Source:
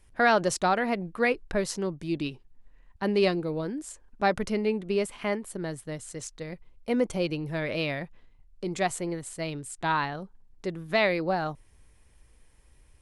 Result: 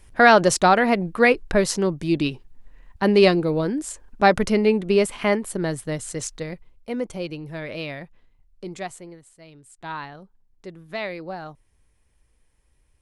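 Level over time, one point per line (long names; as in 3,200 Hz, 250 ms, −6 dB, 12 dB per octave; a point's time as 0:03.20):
0:06.34 +8.5 dB
0:06.90 −2 dB
0:08.66 −2 dB
0:09.40 −15 dB
0:09.93 −6 dB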